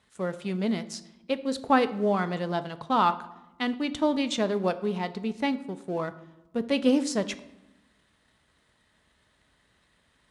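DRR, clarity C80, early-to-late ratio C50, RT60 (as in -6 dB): 11.0 dB, 18.0 dB, 15.5 dB, 0.95 s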